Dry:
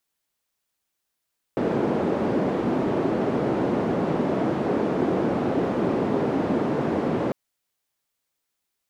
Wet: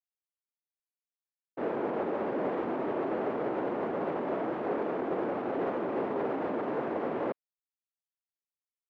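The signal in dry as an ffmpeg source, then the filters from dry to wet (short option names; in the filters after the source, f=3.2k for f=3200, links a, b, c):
-f lavfi -i "anoisesrc=c=white:d=5.75:r=44100:seed=1,highpass=f=220,lowpass=f=350,volume=2.4dB"
-filter_complex "[0:a]alimiter=limit=-18.5dB:level=0:latency=1:release=27,acrossover=split=300 2900:gain=0.2 1 0.112[a][b][c];[a][b][c]amix=inputs=3:normalize=0,agate=range=-33dB:threshold=-25dB:ratio=3:detection=peak"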